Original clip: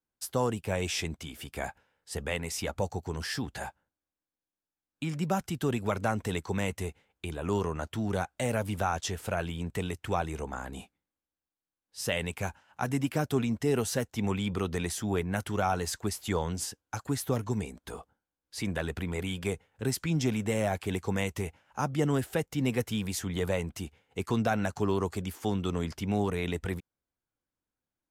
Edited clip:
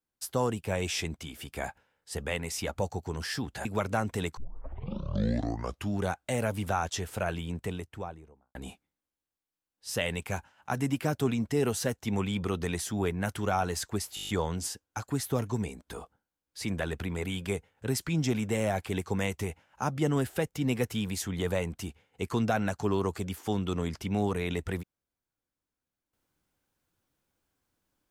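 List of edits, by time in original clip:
3.65–5.76 s: delete
6.48 s: tape start 1.64 s
9.48–10.66 s: studio fade out
16.26 s: stutter 0.02 s, 8 plays

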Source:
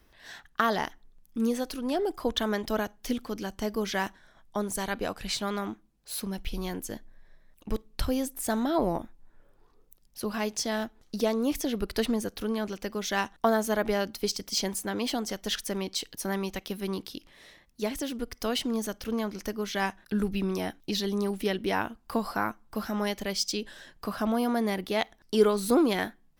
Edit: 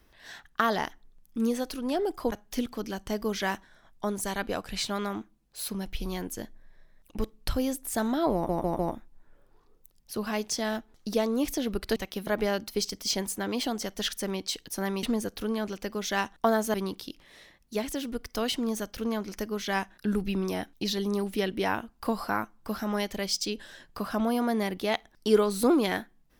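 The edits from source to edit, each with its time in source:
2.32–2.84 s: delete
8.86 s: stutter 0.15 s, 4 plays
12.03–13.74 s: swap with 16.50–16.81 s

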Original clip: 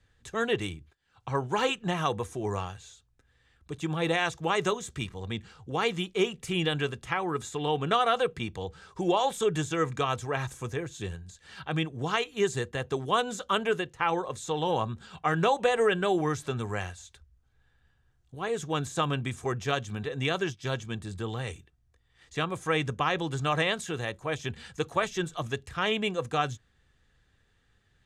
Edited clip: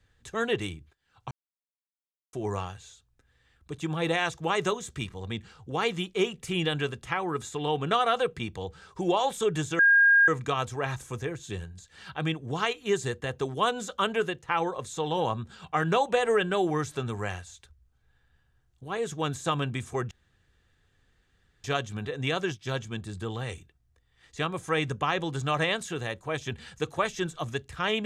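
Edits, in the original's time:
1.31–2.33 s: mute
9.79 s: add tone 1.62 kHz -15.5 dBFS 0.49 s
19.62 s: insert room tone 1.53 s

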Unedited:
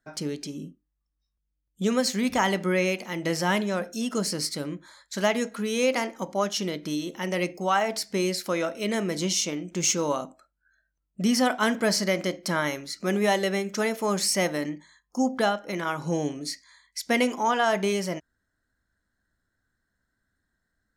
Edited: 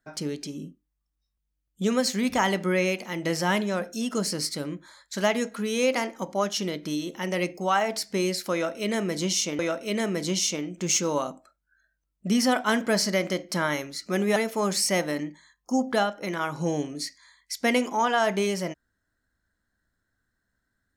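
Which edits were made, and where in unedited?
8.53–9.59 s: loop, 2 plays
13.30–13.82 s: delete

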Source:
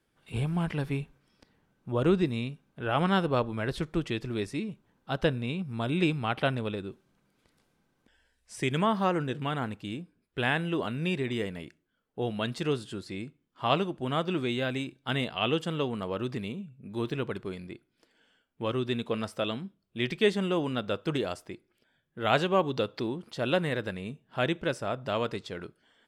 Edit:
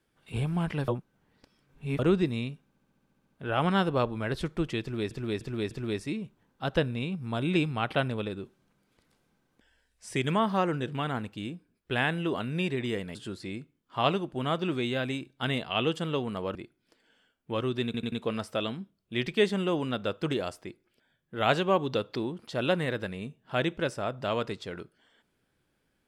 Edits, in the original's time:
0.88–1.99 s: reverse
2.67 s: stutter 0.07 s, 10 plays
4.18–4.48 s: loop, 4 plays
11.62–12.81 s: delete
16.21–17.66 s: delete
18.96 s: stutter 0.09 s, 4 plays

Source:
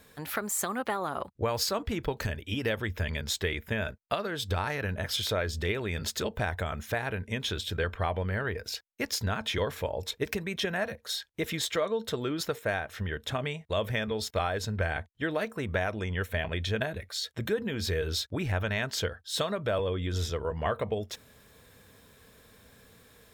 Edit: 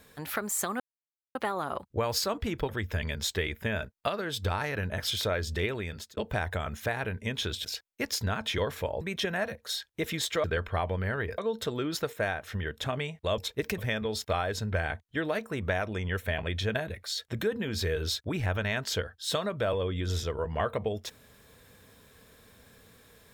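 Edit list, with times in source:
0.80 s: insert silence 0.55 s
2.14–2.75 s: delete
5.77–6.23 s: fade out linear
7.71–8.65 s: move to 11.84 s
10.01–10.41 s: move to 13.84 s

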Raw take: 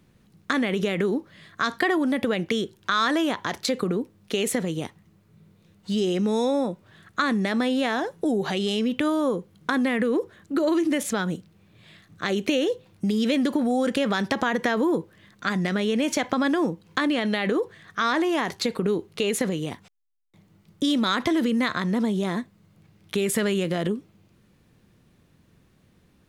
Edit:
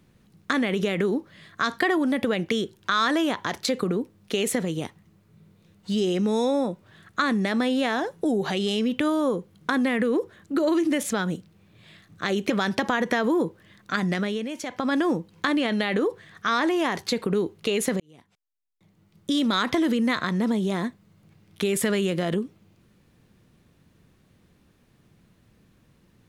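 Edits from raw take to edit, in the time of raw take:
12.50–14.03 s: delete
15.68–16.51 s: dip -9 dB, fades 0.33 s
19.53–21.03 s: fade in

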